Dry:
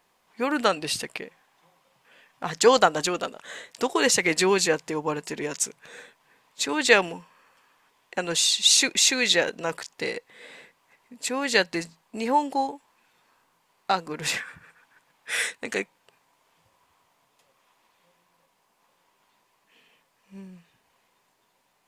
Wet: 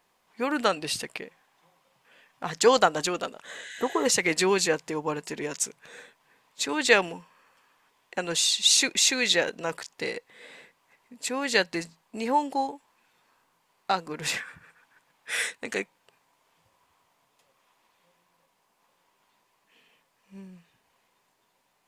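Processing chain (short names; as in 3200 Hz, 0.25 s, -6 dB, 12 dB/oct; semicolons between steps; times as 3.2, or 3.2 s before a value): spectral repair 3.6–4.04, 1400–11000 Hz before; gain -2 dB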